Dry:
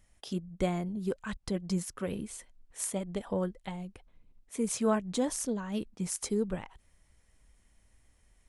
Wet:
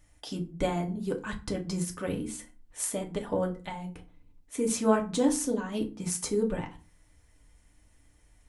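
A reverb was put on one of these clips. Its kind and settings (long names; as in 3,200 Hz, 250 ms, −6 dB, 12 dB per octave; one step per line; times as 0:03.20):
feedback delay network reverb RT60 0.33 s, low-frequency decay 1.5×, high-frequency decay 0.7×, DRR 1.5 dB
level +1.5 dB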